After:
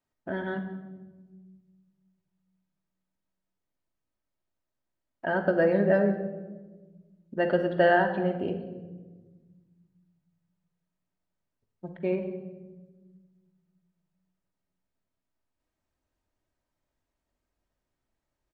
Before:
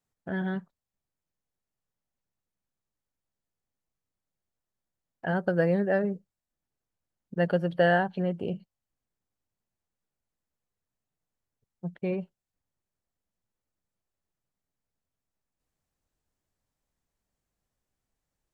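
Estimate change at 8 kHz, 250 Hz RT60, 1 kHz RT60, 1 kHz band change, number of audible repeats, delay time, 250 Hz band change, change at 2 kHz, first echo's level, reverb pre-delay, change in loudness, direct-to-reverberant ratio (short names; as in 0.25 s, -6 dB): n/a, 2.0 s, 1.1 s, +2.5 dB, 1, 0.181 s, +1.0 dB, +2.0 dB, -20.5 dB, 3 ms, +1.5 dB, 3.5 dB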